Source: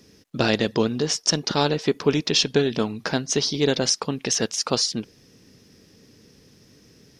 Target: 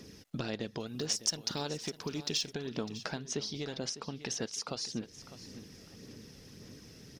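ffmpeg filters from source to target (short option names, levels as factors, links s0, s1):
-filter_complex "[0:a]acompressor=threshold=0.0178:ratio=10,aphaser=in_gain=1:out_gain=1:delay=1.5:decay=0.32:speed=1.8:type=sinusoidal,asettb=1/sr,asplit=3[s0][s1][s2];[s0]atrim=end=0.804[s3];[s1]atrim=start=0.8:end=2.53,asetpts=PTS-STARTPTS,afade=t=in:d=0.004:c=qsin,afade=t=out:st=1.726:d=0.004:c=qsin,aemphasis=mode=production:type=50fm[s4];[s2]atrim=start=2.526[s5];[s3][s4]acrossfade=d=0.004:c1=hsin:c2=qsin[s6];[s6][s5]acrossfade=d=0.004:c1=qsin:c2=hsin,aecho=1:1:603|1206|1809:0.188|0.049|0.0127"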